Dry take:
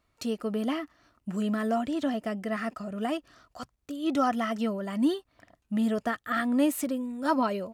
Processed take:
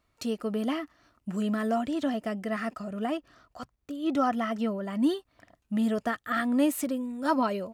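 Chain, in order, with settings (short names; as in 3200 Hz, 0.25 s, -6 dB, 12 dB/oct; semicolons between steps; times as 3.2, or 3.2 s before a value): 2.99–5.04 bell 9000 Hz -5.5 dB 2.6 oct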